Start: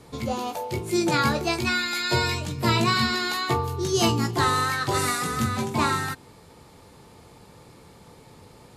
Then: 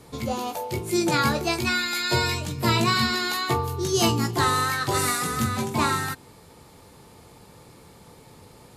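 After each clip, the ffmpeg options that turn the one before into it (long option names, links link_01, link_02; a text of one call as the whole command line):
ffmpeg -i in.wav -af "highshelf=frequency=11000:gain=8.5" out.wav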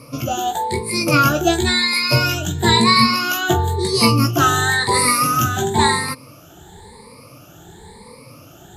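ffmpeg -i in.wav -af "afftfilt=real='re*pow(10,20/40*sin(2*PI*(0.93*log(max(b,1)*sr/1024/100)/log(2)-(0.97)*(pts-256)/sr)))':imag='im*pow(10,20/40*sin(2*PI*(0.93*log(max(b,1)*sr/1024/100)/log(2)-(0.97)*(pts-256)/sr)))':win_size=1024:overlap=0.75,volume=3.5dB" out.wav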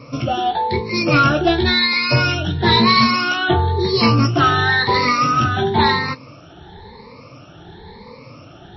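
ffmpeg -i in.wav -af "bandreject=frequency=4800:width=7.3,acontrast=80,volume=-4dB" -ar 16000 -c:a libmp3lame -b:a 24k out.mp3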